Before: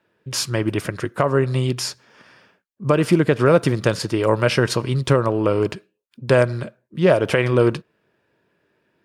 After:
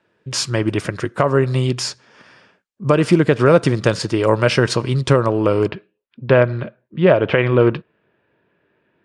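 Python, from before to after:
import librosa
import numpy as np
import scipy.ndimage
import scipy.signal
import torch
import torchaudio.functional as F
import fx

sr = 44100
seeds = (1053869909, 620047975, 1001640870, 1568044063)

y = fx.lowpass(x, sr, hz=fx.steps((0.0, 9000.0), (5.68, 3400.0)), slope=24)
y = F.gain(torch.from_numpy(y), 2.5).numpy()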